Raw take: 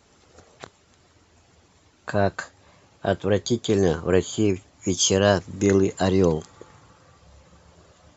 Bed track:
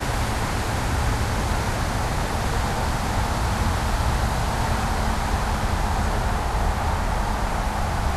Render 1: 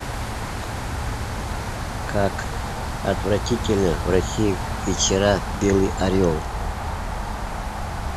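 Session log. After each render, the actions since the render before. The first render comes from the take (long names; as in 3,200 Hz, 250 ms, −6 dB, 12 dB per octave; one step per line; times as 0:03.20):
mix in bed track −4.5 dB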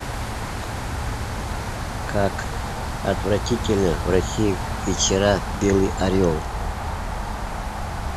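no processing that can be heard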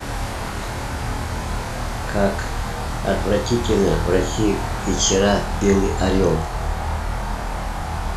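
flutter between parallel walls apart 4.3 metres, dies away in 0.35 s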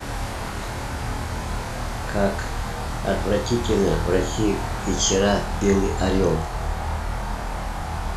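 level −2.5 dB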